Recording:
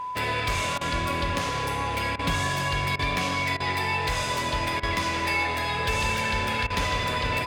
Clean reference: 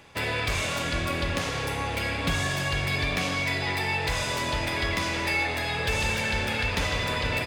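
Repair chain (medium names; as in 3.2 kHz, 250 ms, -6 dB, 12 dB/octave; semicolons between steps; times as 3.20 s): band-stop 1 kHz, Q 30; interpolate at 0.78/2.16/2.96/3.57/4.80/6.67 s, 30 ms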